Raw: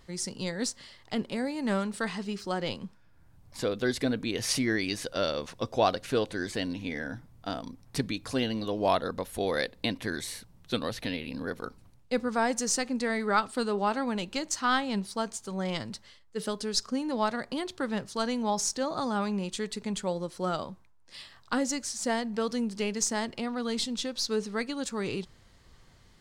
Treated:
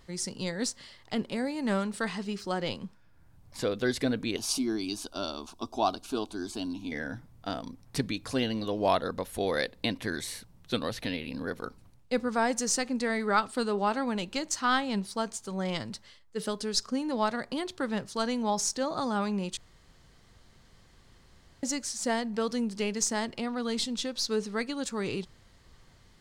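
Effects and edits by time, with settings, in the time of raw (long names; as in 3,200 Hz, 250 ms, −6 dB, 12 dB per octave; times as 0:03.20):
0:04.36–0:06.92: phaser with its sweep stopped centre 510 Hz, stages 6
0:19.57–0:21.63: fill with room tone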